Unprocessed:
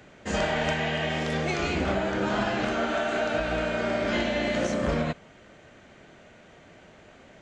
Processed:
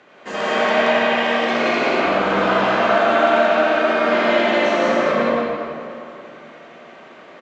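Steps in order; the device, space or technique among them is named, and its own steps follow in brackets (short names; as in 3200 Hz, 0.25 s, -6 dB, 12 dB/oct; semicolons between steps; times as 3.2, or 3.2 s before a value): station announcement (BPF 320–4600 Hz; bell 1100 Hz +7 dB 0.32 oct; loudspeakers at several distances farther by 23 m -9 dB, 60 m -1 dB; reverb RT60 2.6 s, pre-delay 78 ms, DRR -4.5 dB); gain +2 dB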